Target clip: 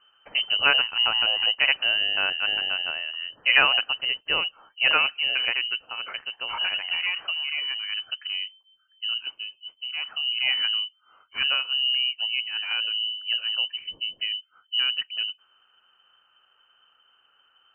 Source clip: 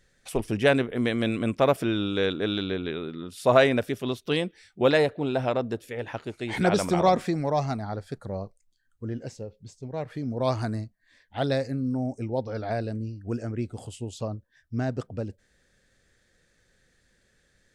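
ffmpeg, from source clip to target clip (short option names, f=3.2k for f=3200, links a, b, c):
-filter_complex "[0:a]equalizer=f=550:t=o:w=1.1:g=-9.5,asettb=1/sr,asplit=3[a][b][c];[a]atrim=end=5.824[d];[b]atrim=start=5.82:end=7.92,asetpts=PTS-STARTPTS,afade=t=in:d=0.004:c=qsin,afade=t=out:st=2.096:d=0.004:c=qsin,acompressor=threshold=-34dB:ratio=2[e];[c]atrim=start=7.916[f];[d][e]acrossfade=d=0.004:c1=hsin:c2=qsin[g];[g][f]acrossfade=d=0.004:c1=qsin:c2=hsin,lowpass=f=2.6k:t=q:w=0.5098,lowpass=f=2.6k:t=q:w=0.6013,lowpass=f=2.6k:t=q:w=0.9,lowpass=f=2.6k:t=q:w=2.563,afreqshift=-3100,volume=5dB"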